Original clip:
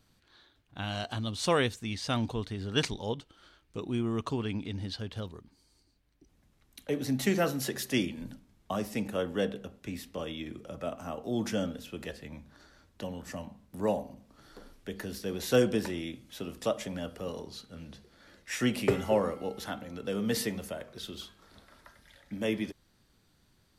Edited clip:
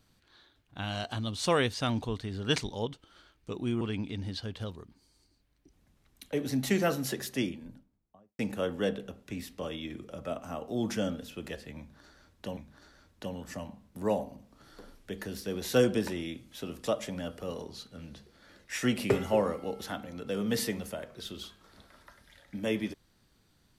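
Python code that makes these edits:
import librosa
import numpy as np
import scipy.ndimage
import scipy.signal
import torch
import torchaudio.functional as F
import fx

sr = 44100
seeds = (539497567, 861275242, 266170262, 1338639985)

y = fx.studio_fade_out(x, sr, start_s=7.55, length_s=1.4)
y = fx.edit(y, sr, fx.cut(start_s=1.74, length_s=0.27),
    fx.cut(start_s=4.08, length_s=0.29),
    fx.repeat(start_s=12.35, length_s=0.78, count=2), tone=tone)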